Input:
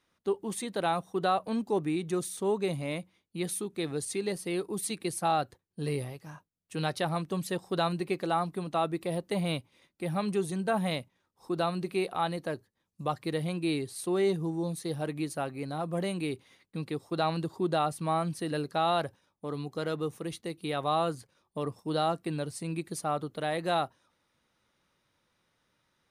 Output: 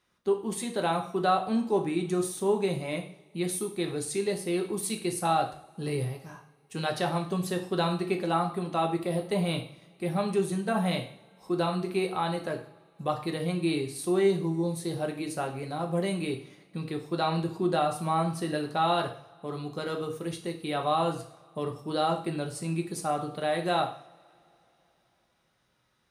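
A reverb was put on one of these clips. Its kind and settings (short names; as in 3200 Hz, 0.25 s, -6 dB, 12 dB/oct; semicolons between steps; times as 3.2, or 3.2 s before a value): two-slope reverb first 0.5 s, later 3.2 s, from -27 dB, DRR 2.5 dB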